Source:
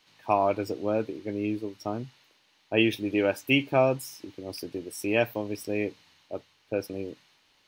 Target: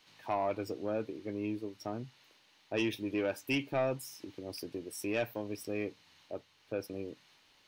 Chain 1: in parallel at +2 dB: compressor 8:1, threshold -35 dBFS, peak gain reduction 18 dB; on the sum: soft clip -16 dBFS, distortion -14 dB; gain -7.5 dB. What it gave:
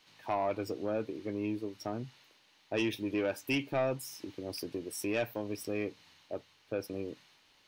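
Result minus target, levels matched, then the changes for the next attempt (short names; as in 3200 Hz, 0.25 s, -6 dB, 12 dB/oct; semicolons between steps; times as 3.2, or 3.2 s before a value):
compressor: peak gain reduction -8.5 dB
change: compressor 8:1, threshold -44.5 dBFS, peak gain reduction 26 dB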